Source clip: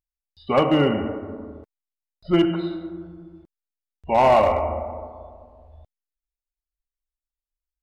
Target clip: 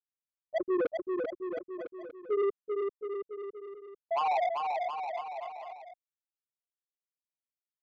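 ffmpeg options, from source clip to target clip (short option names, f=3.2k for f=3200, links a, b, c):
-af "afftfilt=real='re*gte(hypot(re,im),1)':imag='im*gte(hypot(re,im),1)':win_size=1024:overlap=0.75,lowshelf=f=200:g=9.5,areverse,acompressor=threshold=-25dB:ratio=10,areverse,asetrate=52444,aresample=44100,atempo=0.840896,asoftclip=type=tanh:threshold=-29.5dB,aecho=1:1:390|721.5|1003|1243|1446:0.631|0.398|0.251|0.158|0.1,volume=4.5dB"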